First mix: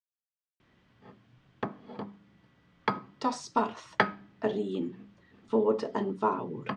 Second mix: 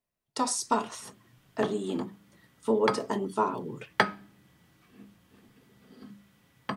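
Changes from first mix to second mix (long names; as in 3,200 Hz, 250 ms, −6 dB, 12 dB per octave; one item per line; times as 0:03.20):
speech: entry −2.85 s
master: remove high-frequency loss of the air 170 metres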